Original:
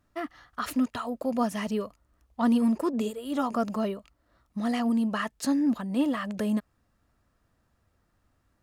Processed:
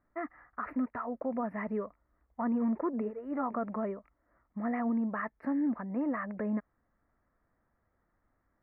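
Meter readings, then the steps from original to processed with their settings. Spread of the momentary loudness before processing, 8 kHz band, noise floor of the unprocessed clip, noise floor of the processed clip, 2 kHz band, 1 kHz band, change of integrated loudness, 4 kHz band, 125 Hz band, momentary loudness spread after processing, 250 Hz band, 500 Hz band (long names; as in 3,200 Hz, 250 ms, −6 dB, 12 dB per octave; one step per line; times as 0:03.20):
12 LU, below −35 dB, −72 dBFS, −77 dBFS, −4.5 dB, −4.5 dB, −6.0 dB, below −35 dB, can't be measured, 10 LU, −6.0 dB, −4.5 dB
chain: elliptic low-pass filter 2,100 Hz, stop band 40 dB
parametric band 93 Hz −6.5 dB 1.8 octaves
brickwall limiter −22 dBFS, peak gain reduction 6.5 dB
level −2.5 dB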